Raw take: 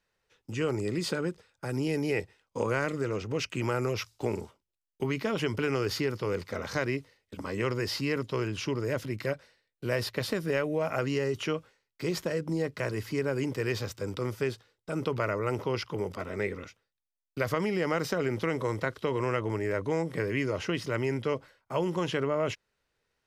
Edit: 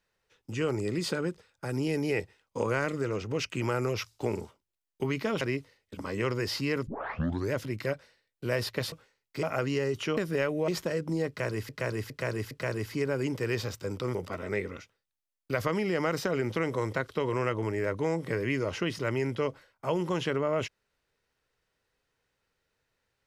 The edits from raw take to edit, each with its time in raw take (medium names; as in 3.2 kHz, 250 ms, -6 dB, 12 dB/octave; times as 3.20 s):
5.41–6.81 s: delete
8.27 s: tape start 0.65 s
10.32–10.83 s: swap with 11.57–12.08 s
12.68–13.09 s: loop, 4 plays
14.32–16.02 s: delete